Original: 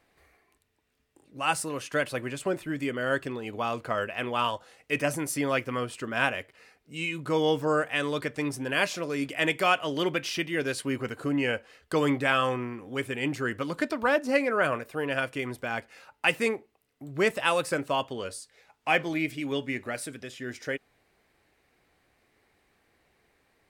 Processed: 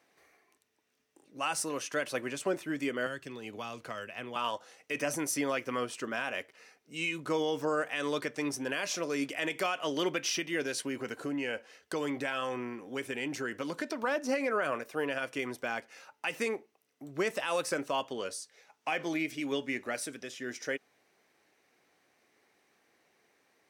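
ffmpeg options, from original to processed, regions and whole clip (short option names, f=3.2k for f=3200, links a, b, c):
-filter_complex "[0:a]asettb=1/sr,asplit=3[a][b][c];[a]atrim=end=3.064[d];[b]atrim=start=3.06:end=4.36,asetpts=PTS-STARTPTS,afade=t=in:d=0.004:c=qsin,afade=t=out:st=1.296:d=0.004:c=qsin,lowshelf=f=150:g=9.5,acrossover=split=170|1900[e][f][g];[e]acompressor=threshold=-43dB:ratio=4[h];[f]acompressor=threshold=-40dB:ratio=4[i];[g]acompressor=threshold=-43dB:ratio=4[j];[h][i][j]amix=inputs=3:normalize=0[k];[c]atrim=start=4.356[l];[d][k]acrossfade=d=0.004:c1=hsin:c2=qsin[m];[m][l]acrossfade=d=0.004:c1=qsin:c2=hsin,asettb=1/sr,asplit=3[n][o][p];[n]atrim=end=10.644[q];[o]atrim=start=10.64:end=13.99,asetpts=PTS-STARTPTS,afade=t=in:d=0.004:c=qsin,afade=t=out:st=3.346:d=0.004:c=qsin,bandreject=f=1.2k:w=11,acompressor=threshold=-29dB:ratio=3:attack=3.2:release=140:knee=1:detection=peak[r];[p]atrim=start=13.986[s];[q][r]acrossfade=d=0.004:c1=hsin:c2=qsin[t];[t][s]acrossfade=d=0.004:c1=qsin:c2=hsin,alimiter=limit=-19.5dB:level=0:latency=1:release=82,highpass=210,equalizer=f=5.9k:w=4.8:g=8.5,volume=-1.5dB"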